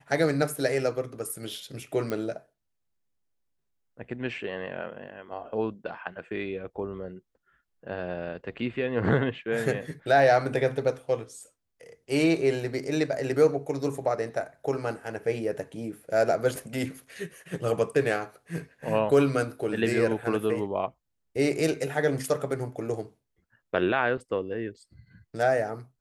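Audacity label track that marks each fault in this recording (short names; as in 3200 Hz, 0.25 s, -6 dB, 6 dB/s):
2.100000	2.100000	pop -18 dBFS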